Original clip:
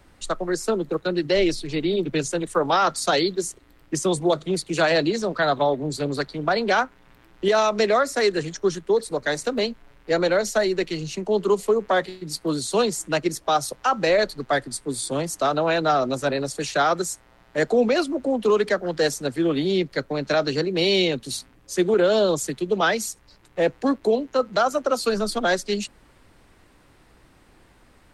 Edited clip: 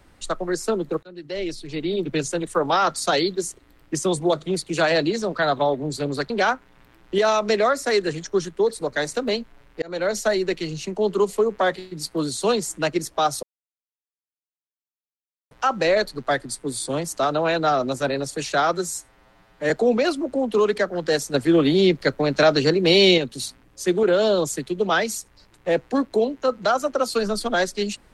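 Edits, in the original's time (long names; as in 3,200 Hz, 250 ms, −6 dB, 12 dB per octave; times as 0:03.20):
0:01.03–0:02.14: fade in, from −23.5 dB
0:06.30–0:06.60: remove
0:10.12–0:10.44: fade in
0:13.73: splice in silence 2.08 s
0:16.99–0:17.61: time-stretch 1.5×
0:19.25–0:21.09: clip gain +5 dB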